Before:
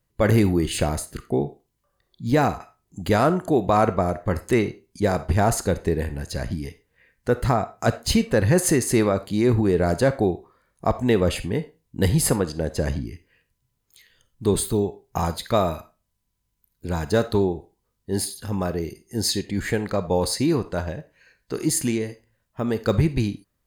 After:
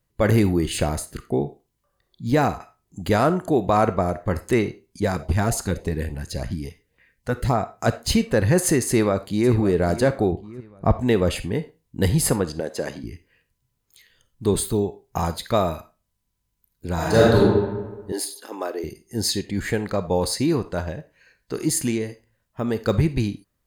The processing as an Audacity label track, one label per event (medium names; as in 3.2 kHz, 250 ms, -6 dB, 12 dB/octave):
5.040000	7.540000	LFO notch saw up 3.6 Hz 280–2000 Hz
8.880000	9.500000	echo throw 550 ms, feedback 40%, level -14.5 dB
10.320000	11.010000	tone controls bass +8 dB, treble -11 dB
12.600000	13.040000	high-pass 290 Hz
16.940000	17.380000	reverb throw, RT60 1.3 s, DRR -7 dB
18.120000	18.840000	elliptic high-pass 300 Hz, stop band 70 dB